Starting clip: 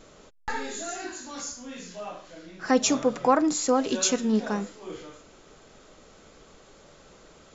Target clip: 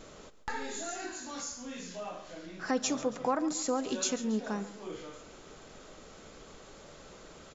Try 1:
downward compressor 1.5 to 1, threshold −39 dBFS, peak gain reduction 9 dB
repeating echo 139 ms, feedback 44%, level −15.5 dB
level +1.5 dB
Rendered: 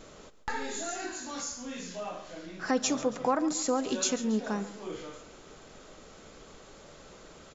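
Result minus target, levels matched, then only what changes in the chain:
downward compressor: peak gain reduction −2.5 dB
change: downward compressor 1.5 to 1, threshold −47 dBFS, peak gain reduction 11.5 dB

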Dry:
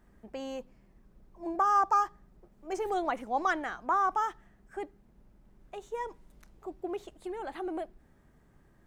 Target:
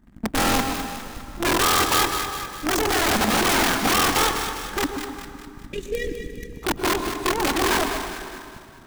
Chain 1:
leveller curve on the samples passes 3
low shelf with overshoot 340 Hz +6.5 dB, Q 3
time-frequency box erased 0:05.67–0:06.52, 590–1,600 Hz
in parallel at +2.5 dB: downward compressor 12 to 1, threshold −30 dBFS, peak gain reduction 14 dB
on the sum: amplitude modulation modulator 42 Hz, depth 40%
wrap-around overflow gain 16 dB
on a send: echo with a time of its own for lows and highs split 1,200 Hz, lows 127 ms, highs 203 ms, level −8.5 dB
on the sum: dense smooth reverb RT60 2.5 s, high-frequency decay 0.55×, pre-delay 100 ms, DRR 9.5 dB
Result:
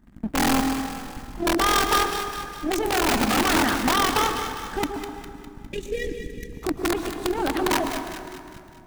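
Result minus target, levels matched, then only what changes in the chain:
downward compressor: peak gain reduction +9 dB
change: downward compressor 12 to 1, threshold −20 dBFS, peak gain reduction 5 dB

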